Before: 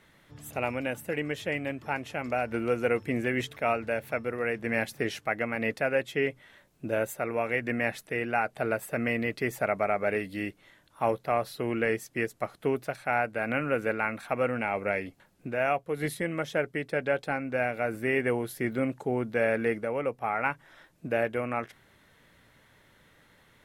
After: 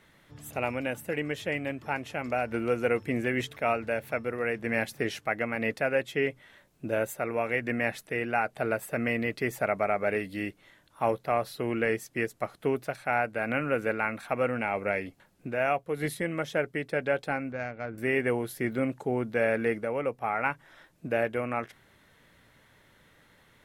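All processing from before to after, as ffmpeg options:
-filter_complex "[0:a]asettb=1/sr,asplit=3[s0][s1][s2];[s0]atrim=end=17.524[s3];[s1]atrim=start=17.52:end=17.98,asetpts=PTS-STARTPTS,afade=t=in:d=0.004:c=qsin,afade=t=out:st=0.456:d=0.004:c=qsin,equalizer=f=520:t=o:w=2.7:g=-7,adynamicsmooth=sensitivity=1:basefreq=1400[s4];[s2]atrim=start=17.976[s5];[s3][s4]acrossfade=d=0.004:c1=hsin:c2=qsin[s6];[s6][s5]acrossfade=d=0.004:c1=qsin:c2=hsin"

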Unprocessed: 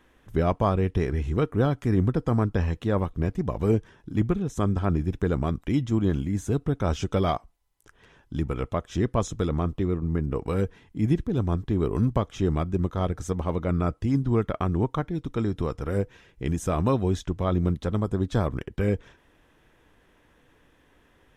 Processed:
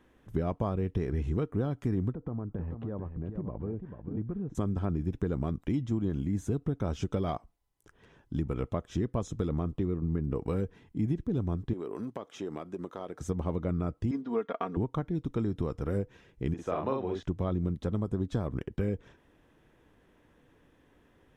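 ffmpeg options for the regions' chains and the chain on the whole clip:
-filter_complex "[0:a]asettb=1/sr,asplit=3[s0][s1][s2];[s0]atrim=end=2.134[s3];[s1]atrim=start=2.13:end=4.55,asetpts=PTS-STARTPTS,afade=t=in:d=0.004:c=qsin,afade=t=out:st=2.416:d=0.004:c=qsin,lowpass=1400,acompressor=threshold=0.0282:ratio=5:attack=3.2:release=140:knee=1:detection=peak,aecho=1:1:441:0.398,atrim=end_sample=106722[s4];[s2]atrim=start=4.546[s5];[s3][s4]acrossfade=d=0.004:c1=hsin:c2=qsin[s6];[s6][s5]acrossfade=d=0.004:c1=qsin:c2=hsin,asettb=1/sr,asplit=3[s7][s8][s9];[s7]atrim=end=11.734[s10];[s8]atrim=start=11.73:end=13.21,asetpts=PTS-STARTPTS,afade=t=in:d=0.004:c=qsin,afade=t=out:st=1.476:d=0.004:c=qsin,highpass=380,acompressor=threshold=0.0282:ratio=5:attack=3.2:release=140:knee=1:detection=peak[s11];[s9]atrim=start=13.206[s12];[s10][s11]acrossfade=d=0.004:c1=hsin:c2=qsin[s13];[s13][s12]acrossfade=d=0.004:c1=qsin:c2=hsin,asettb=1/sr,asplit=3[s14][s15][s16];[s14]atrim=end=14.114[s17];[s15]atrim=start=14.11:end=14.77,asetpts=PTS-STARTPTS,afade=t=in:d=0.004:c=qsin,afade=t=out:st=0.656:d=0.004:c=qsin,highpass=430,lowpass=4500,aecho=1:1:4.3:0.78,atrim=end_sample=29106[s18];[s16]atrim=start=14.766[s19];[s17][s18]acrossfade=d=0.004:c1=hsin:c2=qsin[s20];[s20][s19]acrossfade=d=0.004:c1=qsin:c2=hsin,asettb=1/sr,asplit=3[s21][s22][s23];[s21]atrim=end=16.544[s24];[s22]atrim=start=16.54:end=17.23,asetpts=PTS-STARTPTS,afade=t=in:d=0.004:c=qsin,afade=t=out:st=0.686:d=0.004:c=qsin,acrossover=split=350 4400:gain=0.141 1 0.0794[s25][s26][s27];[s25][s26][s27]amix=inputs=3:normalize=0,asplit=2[s28][s29];[s29]adelay=45,volume=0.75[s30];[s28][s30]amix=inputs=2:normalize=0,atrim=end_sample=30429[s31];[s23]atrim=start=17.226[s32];[s24][s31]acrossfade=d=0.004:c1=hsin:c2=qsin[s33];[s33][s32]acrossfade=d=0.004:c1=qsin:c2=hsin,equalizer=f=210:w=0.31:g=7,acompressor=threshold=0.112:ratio=6,volume=0.447"

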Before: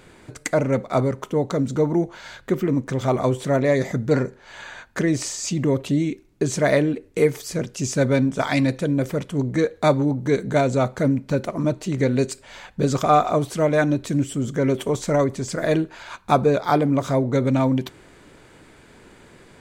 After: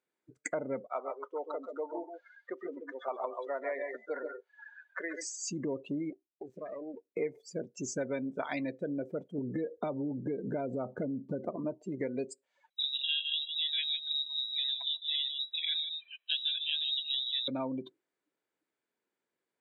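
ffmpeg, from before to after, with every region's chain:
-filter_complex "[0:a]asettb=1/sr,asplit=3[s0][s1][s2];[s0]atrim=end=0.874[s3];[s1]atrim=start=0.87:end=5.21,asetpts=PTS-STARTPTS,afade=t=in:d=0.004:c=qsin,afade=t=out:st=4.336:d=0.004:c=qsin,highpass=660,lowpass=5100,aecho=1:1:131|141:0.422|0.422,atrim=end_sample=191394[s4];[s2]atrim=start=5.206[s5];[s3][s4]acrossfade=d=0.004:c1=hsin:c2=qsin[s6];[s6][s5]acrossfade=d=0.004:c1=qsin:c2=hsin,asettb=1/sr,asplit=3[s7][s8][s9];[s7]atrim=end=6.104[s10];[s8]atrim=start=6.1:end=7.05,asetpts=PTS-STARTPTS,afade=t=in:d=0.004:c=qsin,afade=t=out:st=0.946:d=0.004:c=qsin,bass=f=250:g=-3,treble=f=4000:g=-13,acompressor=threshold=0.0631:ratio=16:attack=3.2:release=140:knee=1:detection=peak,aeval=exprs='max(val(0),0)':c=same[s11];[s9]atrim=start=7.046[s12];[s10][s11]acrossfade=d=0.004:c1=hsin:c2=qsin[s13];[s13][s12]acrossfade=d=0.004:c1=qsin:c2=hsin,asettb=1/sr,asplit=3[s14][s15][s16];[s14]atrim=end=9.384[s17];[s15]atrim=start=9.38:end=11.56,asetpts=PTS-STARTPTS,afade=t=in:d=0.004:c=qsin,afade=t=out:st=2.176:d=0.004:c=qsin,lowshelf=f=440:g=10,acompressor=threshold=0.178:ratio=6:attack=3.2:release=140:knee=1:detection=peak[s18];[s16]atrim=start=11.556[s19];[s17][s18]acrossfade=d=0.004:c1=hsin:c2=qsin[s20];[s20][s19]acrossfade=d=0.004:c1=qsin:c2=hsin,asettb=1/sr,asplit=3[s21][s22][s23];[s21]atrim=end=12.704[s24];[s22]atrim=start=12.7:end=17.48,asetpts=PTS-STARTPTS,afade=t=in:d=0.004:c=qsin,afade=t=out:st=4.776:d=0.004:c=qsin,aecho=1:1:152:0.335,atrim=end_sample=210798,lowpass=f=3400:t=q:w=0.5098,lowpass=f=3400:t=q:w=0.6013,lowpass=f=3400:t=q:w=0.9,lowpass=f=3400:t=q:w=2.563,afreqshift=-4000[s25];[s23]atrim=start=17.476[s26];[s24][s25]acrossfade=d=0.004:c1=hsin:c2=qsin[s27];[s27][s26]acrossfade=d=0.004:c1=qsin:c2=hsin,afftdn=nr=33:nf=-28,highpass=290,acompressor=threshold=0.0398:ratio=3,volume=0.531"

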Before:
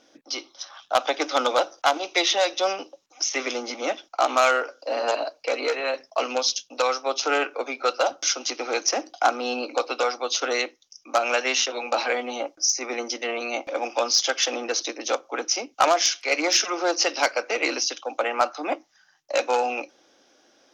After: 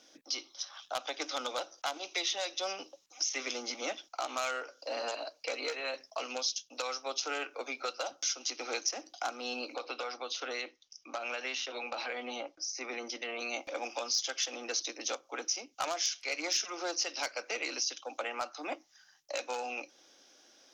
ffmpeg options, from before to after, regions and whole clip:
-filter_complex "[0:a]asettb=1/sr,asplit=3[s0][s1][s2];[s0]atrim=end=9.744[s3];[s1]atrim=start=9.74:end=13.39,asetpts=PTS-STARTPTS,afade=t=in:d=0.004:c=qsin,afade=t=out:st=3.646:d=0.004:c=qsin,acompressor=threshold=0.0501:ratio=2.5:attack=3.2:release=140:knee=1:detection=peak,lowpass=4000[s4];[s2]atrim=start=13.386[s5];[s3][s4]acrossfade=d=0.004:c1=hsin:c2=qsin[s6];[s6][s5]acrossfade=d=0.004:c1=qsin:c2=hsin,alimiter=limit=0.2:level=0:latency=1:release=445,highshelf=f=2500:g=10.5,acrossover=split=190[s7][s8];[s8]acompressor=threshold=0.0178:ratio=1.5[s9];[s7][s9]amix=inputs=2:normalize=0,volume=0.447"

